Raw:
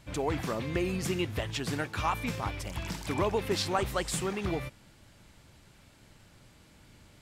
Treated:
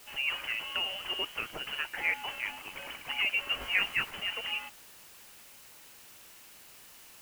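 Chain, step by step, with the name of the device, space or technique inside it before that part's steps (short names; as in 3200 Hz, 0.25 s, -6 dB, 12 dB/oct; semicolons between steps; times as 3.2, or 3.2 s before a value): scrambled radio voice (BPF 330–3000 Hz; inverted band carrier 3200 Hz; white noise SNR 17 dB); 3.59–4.11 doubler 20 ms -2.5 dB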